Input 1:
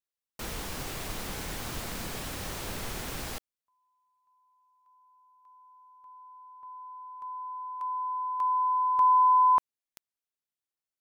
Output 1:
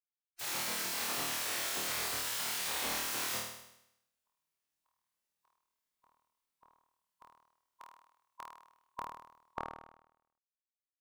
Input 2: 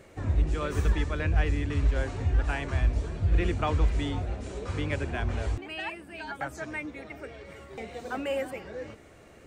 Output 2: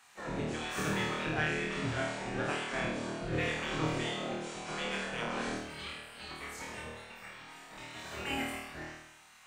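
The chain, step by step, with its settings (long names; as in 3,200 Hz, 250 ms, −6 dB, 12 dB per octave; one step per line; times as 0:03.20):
gate on every frequency bin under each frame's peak −15 dB weak
flutter between parallel walls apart 4.4 metres, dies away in 0.82 s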